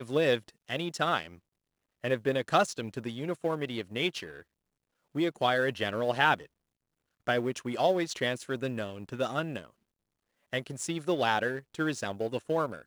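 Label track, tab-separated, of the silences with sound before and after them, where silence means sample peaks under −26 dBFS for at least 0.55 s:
1.220000	2.040000	silence
4.180000	5.170000	silence
6.340000	7.280000	silence
9.580000	10.530000	silence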